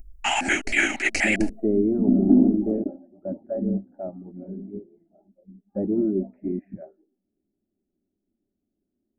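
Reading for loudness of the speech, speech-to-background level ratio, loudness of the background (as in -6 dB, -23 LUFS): -24.0 LUFS, -1.0 dB, -23.0 LUFS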